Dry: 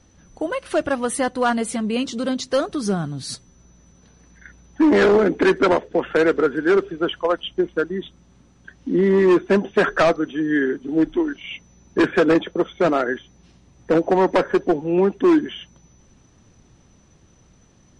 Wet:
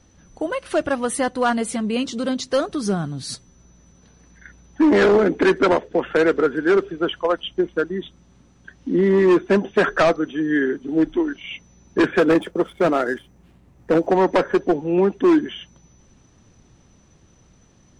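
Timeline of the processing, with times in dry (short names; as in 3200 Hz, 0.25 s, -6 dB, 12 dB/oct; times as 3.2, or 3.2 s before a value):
12.19–14.07 median filter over 9 samples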